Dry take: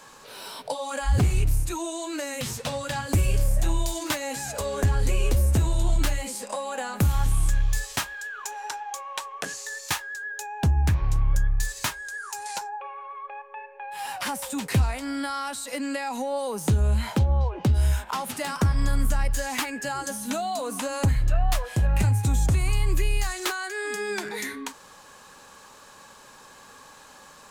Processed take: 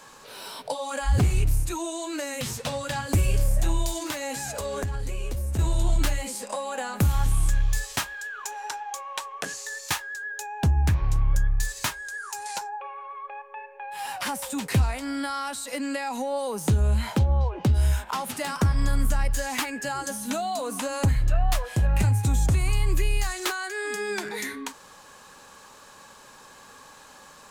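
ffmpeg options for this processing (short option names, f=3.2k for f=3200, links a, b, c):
-filter_complex "[0:a]asettb=1/sr,asplit=3[a][b][c];[a]atrim=end=4.074[d];[b]atrim=start=4.07:end=5.59,asetpts=PTS-STARTPTS,afade=t=in:d=0.004:c=qsin,afade=t=out:st=1.516:d=0.004:c=qsin,acompressor=threshold=-26dB:ratio=6:attack=3.2:release=140:knee=1:detection=peak[e];[c]atrim=start=5.586[f];[d][e]acrossfade=d=0.004:c1=hsin:c2=qsin[g];[g][f]acrossfade=d=0.004:c1=qsin:c2=hsin"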